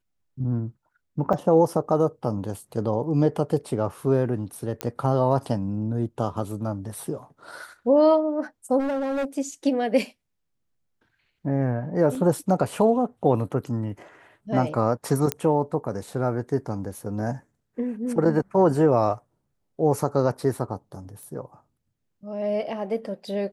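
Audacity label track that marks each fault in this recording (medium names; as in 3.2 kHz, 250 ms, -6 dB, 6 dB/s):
1.330000	1.330000	dropout 4.8 ms
4.810000	4.810000	pop -11 dBFS
8.790000	9.250000	clipped -23 dBFS
12.150000	12.150000	dropout 2.5 ms
15.320000	15.320000	pop -7 dBFS
21.230000	21.230000	pop -29 dBFS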